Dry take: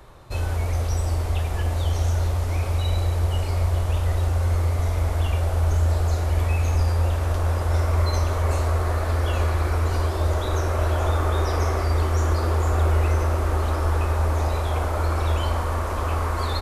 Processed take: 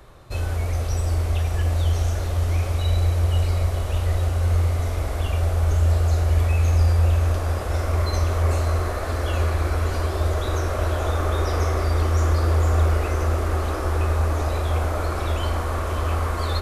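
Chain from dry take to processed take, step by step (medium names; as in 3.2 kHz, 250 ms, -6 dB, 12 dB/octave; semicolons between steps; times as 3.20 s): peaking EQ 910 Hz -5.5 dB 0.24 oct; echo that smears into a reverb 582 ms, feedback 63%, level -10 dB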